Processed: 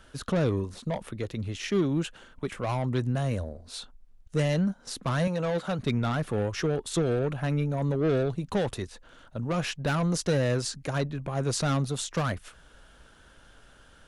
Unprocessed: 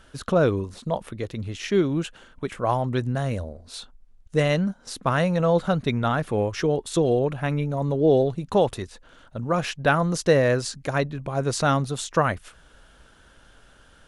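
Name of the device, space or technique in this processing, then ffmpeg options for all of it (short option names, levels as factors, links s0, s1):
one-band saturation: -filter_complex "[0:a]asettb=1/sr,asplit=3[s0][s1][s2];[s0]atrim=end=5.274[s3];[s1]atrim=start=5.27:end=5.79,asetpts=PTS-STARTPTS,afade=t=in:d=0.004:c=qsin,afade=t=out:st=0.516:d=0.004:c=qsin,highpass=f=290:p=1[s4];[s2]atrim=start=5.786[s5];[s3][s4]acrossfade=d=0.004:c1=hsin:c2=qsin[s6];[s6][s5]acrossfade=d=0.004:c1=qsin:c2=hsin,acrossover=split=280|3700[s7][s8][s9];[s8]asoftclip=type=tanh:threshold=0.0531[s10];[s7][s10][s9]amix=inputs=3:normalize=0,volume=0.841"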